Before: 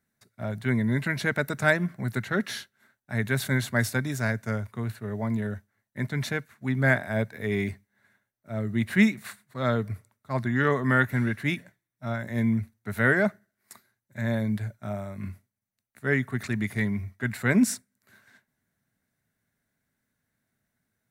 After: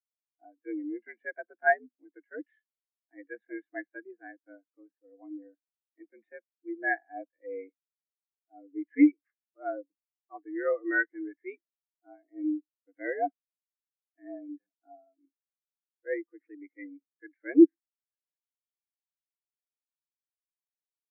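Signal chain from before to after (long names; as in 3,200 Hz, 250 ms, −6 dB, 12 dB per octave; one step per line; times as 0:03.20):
0:12.11–0:13.24: parametric band 1,500 Hz −5 dB 0.4 octaves
single-sideband voice off tune +80 Hz 230–3,100 Hz
every bin expanded away from the loudest bin 2.5 to 1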